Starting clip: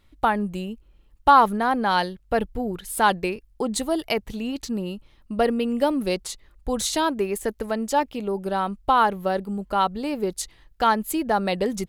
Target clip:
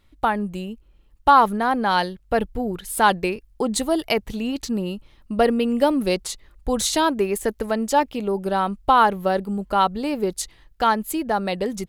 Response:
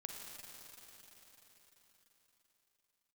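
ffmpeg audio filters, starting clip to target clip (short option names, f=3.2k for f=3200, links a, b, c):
-af "dynaudnorm=f=340:g=9:m=3.5dB"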